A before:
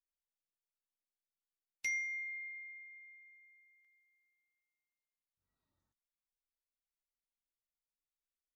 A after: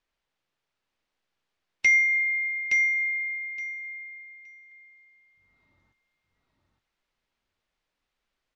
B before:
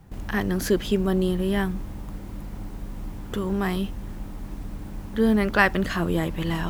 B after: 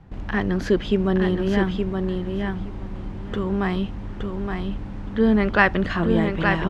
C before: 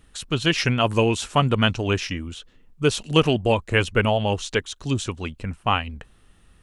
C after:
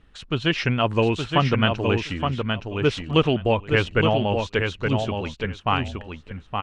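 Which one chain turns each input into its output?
low-pass filter 3,500 Hz 12 dB per octave
repeating echo 869 ms, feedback 15%, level −5 dB
loudness normalisation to −23 LKFS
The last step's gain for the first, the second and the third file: +18.0, +2.0, −1.0 decibels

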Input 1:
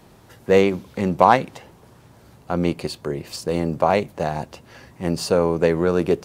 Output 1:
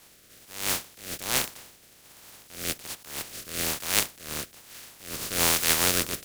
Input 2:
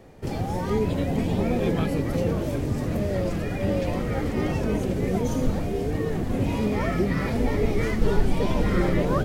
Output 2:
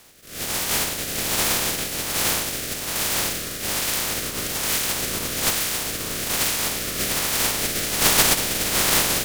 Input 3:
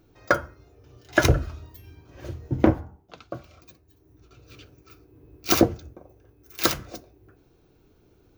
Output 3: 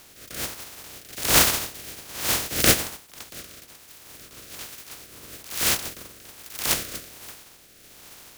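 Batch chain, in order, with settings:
compressing power law on the bin magnitudes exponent 0.11
rotating-speaker cabinet horn 1.2 Hz
level that may rise only so fast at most 110 dB per second
normalise the peak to −2 dBFS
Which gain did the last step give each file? +0.5, +3.0, +14.5 decibels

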